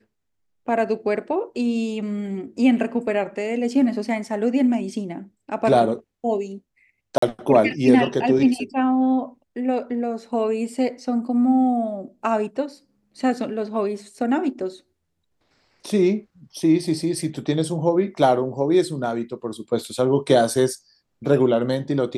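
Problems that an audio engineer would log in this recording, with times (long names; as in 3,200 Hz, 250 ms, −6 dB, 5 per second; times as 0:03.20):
0:07.18–0:07.22: drop-out 44 ms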